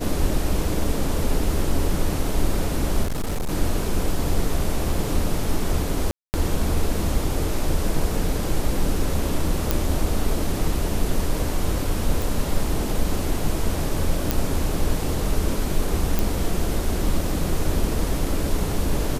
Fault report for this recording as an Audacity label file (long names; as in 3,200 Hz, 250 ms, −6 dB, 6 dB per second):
3.030000	3.490000	clipping −21 dBFS
6.110000	6.340000	drop-out 229 ms
9.710000	9.710000	click
12.220000	12.220000	click
14.310000	14.310000	click −3 dBFS
16.190000	16.190000	click